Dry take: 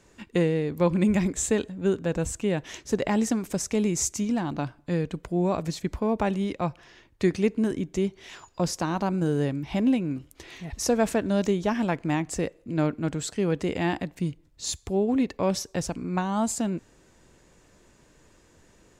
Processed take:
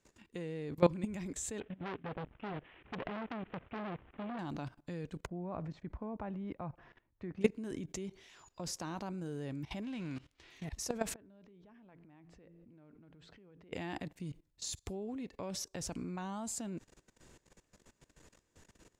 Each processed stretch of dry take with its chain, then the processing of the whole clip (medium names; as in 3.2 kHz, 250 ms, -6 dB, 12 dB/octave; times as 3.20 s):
1.60–4.39 s: CVSD coder 16 kbps + transformer saturation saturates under 1.7 kHz
5.26–7.41 s: low-pass 1.4 kHz + peaking EQ 410 Hz -4.5 dB 0.87 oct
9.82–10.50 s: formants flattened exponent 0.6 + low-pass 3.8 kHz + peaking EQ 570 Hz -4 dB 2.6 oct
11.14–13.73 s: de-hum 84.84 Hz, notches 5 + compression 8:1, threshold -37 dBFS + distance through air 330 m
whole clip: treble shelf 2.2 kHz +3 dB; level held to a coarse grid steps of 19 dB; trim -2.5 dB